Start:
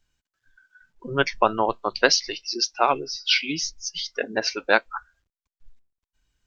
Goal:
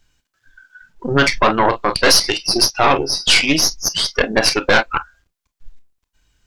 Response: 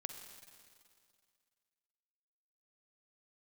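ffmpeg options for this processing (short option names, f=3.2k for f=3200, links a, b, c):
-filter_complex "[1:a]atrim=start_sample=2205,atrim=end_sample=4410,asetrate=83790,aresample=44100[a];[0:a][a]afir=irnorm=-1:irlink=0,apsyclip=28dB,aeval=exprs='1.12*(cos(1*acos(clip(val(0)/1.12,-1,1)))-cos(1*PI/2))+0.398*(cos(2*acos(clip(val(0)/1.12,-1,1)))-cos(2*PI/2))+0.0501*(cos(3*acos(clip(val(0)/1.12,-1,1)))-cos(3*PI/2))':c=same,volume=-6.5dB"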